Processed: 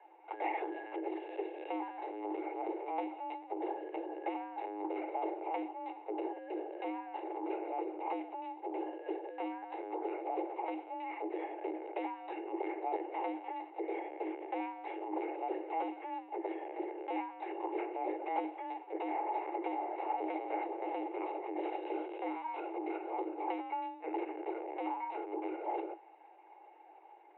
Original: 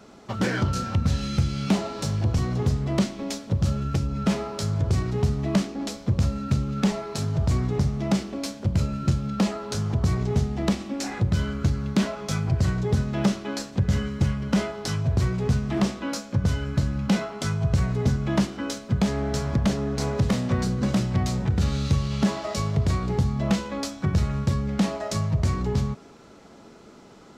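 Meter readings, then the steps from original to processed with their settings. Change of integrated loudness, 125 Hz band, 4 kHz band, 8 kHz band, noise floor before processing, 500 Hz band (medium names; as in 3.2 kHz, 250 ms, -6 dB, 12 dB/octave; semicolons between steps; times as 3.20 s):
-14.0 dB, under -40 dB, -24.5 dB, under -40 dB, -48 dBFS, -7.5 dB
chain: LPC vocoder at 8 kHz pitch kept; cascade formant filter e; frequency shift +310 Hz; trim +2.5 dB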